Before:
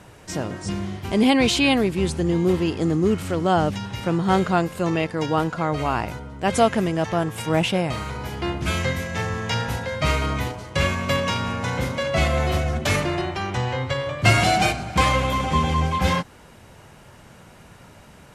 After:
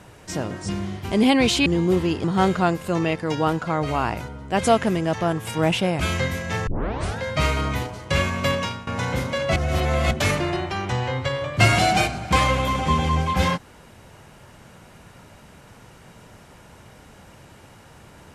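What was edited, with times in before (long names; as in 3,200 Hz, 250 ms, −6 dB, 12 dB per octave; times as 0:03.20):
0:01.66–0:02.23: remove
0:02.81–0:04.15: remove
0:07.91–0:08.65: remove
0:09.32: tape start 0.51 s
0:11.19–0:11.52: fade out, to −18 dB
0:12.21–0:12.76: reverse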